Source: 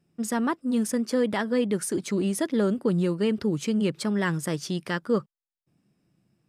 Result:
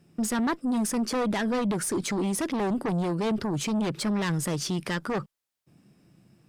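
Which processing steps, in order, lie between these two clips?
added harmonics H 5 -7 dB, 8 -22 dB, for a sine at -13.5 dBFS; limiter -22 dBFS, peak gain reduction 11 dB

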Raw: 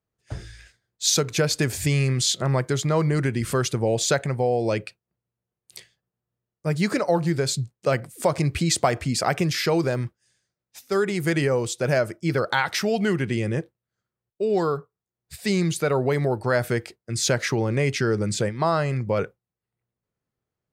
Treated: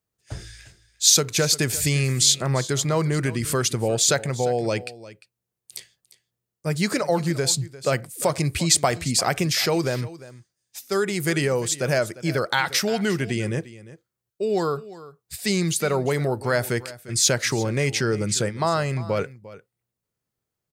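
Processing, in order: high shelf 3800 Hz +9.5 dB; on a send: echo 0.35 s -17.5 dB; on the sum: gain -1 dB

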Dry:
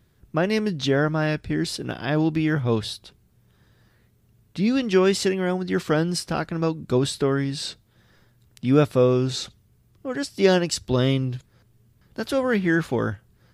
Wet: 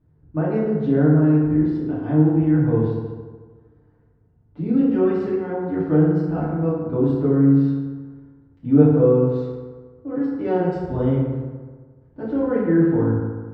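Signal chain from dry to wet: LPF 1100 Hz 12 dB/oct; low shelf 290 Hz +7 dB; notches 60/120/180 Hz; FDN reverb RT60 1.5 s, low-frequency decay 0.9×, high-frequency decay 0.5×, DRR -9.5 dB; gain -11.5 dB

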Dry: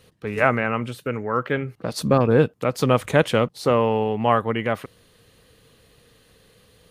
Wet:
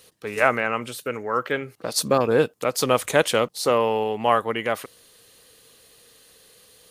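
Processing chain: tone controls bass -11 dB, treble +10 dB

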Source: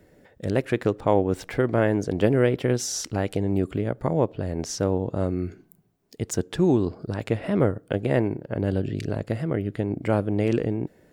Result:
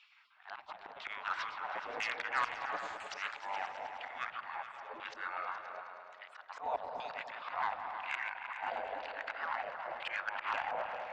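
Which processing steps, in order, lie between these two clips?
reverse delay 0.215 s, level -9 dB; LPF 4900 Hz 24 dB/oct; spectral gate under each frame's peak -25 dB weak; auto swell 0.171 s; LFO band-pass saw down 1 Hz 420–2600 Hz; added harmonics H 5 -19 dB, 6 -42 dB, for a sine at -32.5 dBFS; repeats that get brighter 0.105 s, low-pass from 200 Hz, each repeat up 2 oct, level -3 dB; gain +12.5 dB

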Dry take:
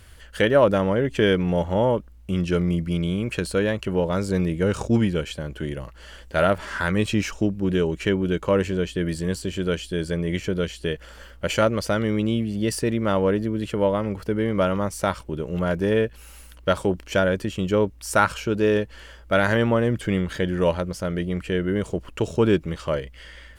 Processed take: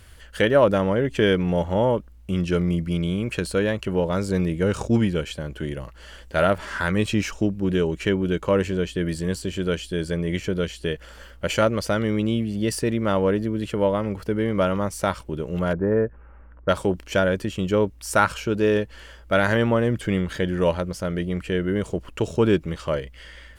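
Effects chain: 15.73–16.69 inverse Chebyshev low-pass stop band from 4000 Hz, stop band 50 dB

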